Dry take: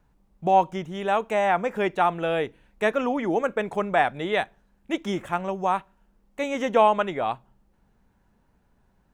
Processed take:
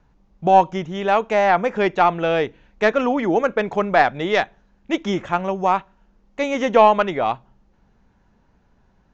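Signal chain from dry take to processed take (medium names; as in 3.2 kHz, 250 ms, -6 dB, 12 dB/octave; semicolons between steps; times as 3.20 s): tracing distortion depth 0.042 ms; steep low-pass 6.9 kHz 72 dB/octave; trim +5.5 dB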